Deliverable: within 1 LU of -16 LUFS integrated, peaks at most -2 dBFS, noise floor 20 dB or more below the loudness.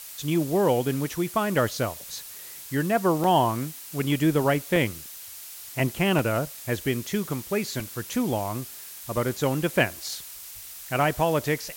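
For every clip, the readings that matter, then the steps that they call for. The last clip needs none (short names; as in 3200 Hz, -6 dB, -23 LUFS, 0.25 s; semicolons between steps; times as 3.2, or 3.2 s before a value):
dropouts 6; longest dropout 1.8 ms; noise floor -42 dBFS; noise floor target -46 dBFS; loudness -26.0 LUFS; peak -9.0 dBFS; loudness target -16.0 LUFS
-> interpolate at 3.24/4.76/6.19/7.8/9.37/10.09, 1.8 ms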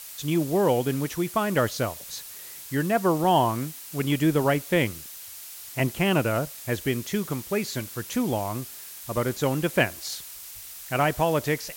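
dropouts 0; noise floor -42 dBFS; noise floor target -46 dBFS
-> noise print and reduce 6 dB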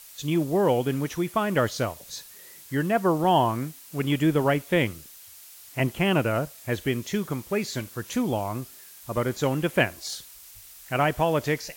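noise floor -48 dBFS; loudness -26.0 LUFS; peak -9.0 dBFS; loudness target -16.0 LUFS
-> gain +10 dB; limiter -2 dBFS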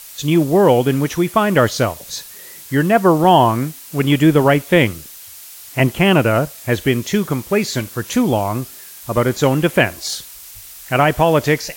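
loudness -16.0 LUFS; peak -2.0 dBFS; noise floor -38 dBFS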